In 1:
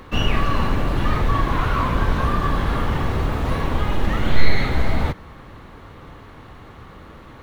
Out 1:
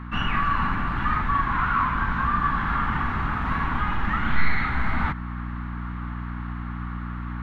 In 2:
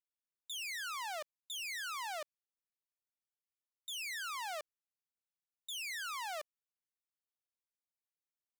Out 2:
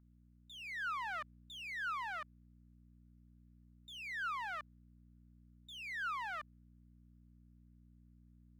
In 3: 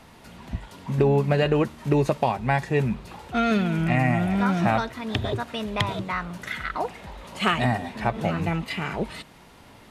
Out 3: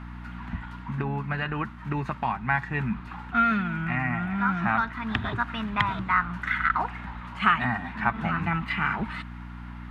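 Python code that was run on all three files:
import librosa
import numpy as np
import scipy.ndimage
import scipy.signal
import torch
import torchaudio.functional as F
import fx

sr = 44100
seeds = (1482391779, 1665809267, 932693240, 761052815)

y = fx.add_hum(x, sr, base_hz=60, snr_db=11)
y = fx.rider(y, sr, range_db=3, speed_s=0.5)
y = fx.curve_eq(y, sr, hz=(110.0, 220.0, 530.0, 850.0, 1400.0, 5400.0, 10000.0), db=(0, 5, -12, 6, 14, -8, -13))
y = F.gain(torch.from_numpy(y), -7.0).numpy()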